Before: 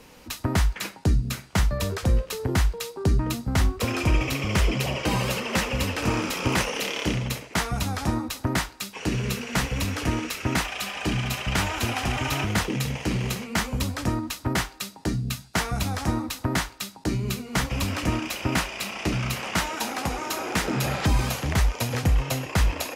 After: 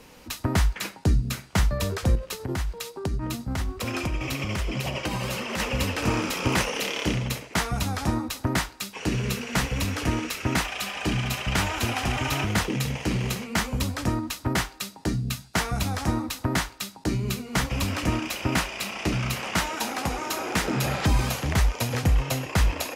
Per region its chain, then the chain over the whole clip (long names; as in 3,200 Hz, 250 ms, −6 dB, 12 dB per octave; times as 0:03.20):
0:02.15–0:05.60: notch filter 450 Hz, Q 13 + downward compressor 5 to 1, threshold −23 dBFS + amplitude tremolo 11 Hz, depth 28%
whole clip: no processing